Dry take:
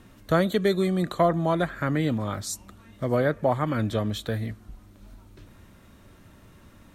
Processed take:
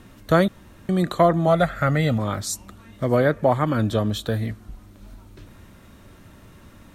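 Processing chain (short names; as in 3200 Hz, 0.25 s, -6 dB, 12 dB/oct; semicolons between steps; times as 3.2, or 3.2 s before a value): 0.48–0.89 room tone; 1.47–2.19 comb 1.5 ms, depth 64%; 3.65–4.39 bell 2100 Hz -8 dB 0.37 oct; gain +4.5 dB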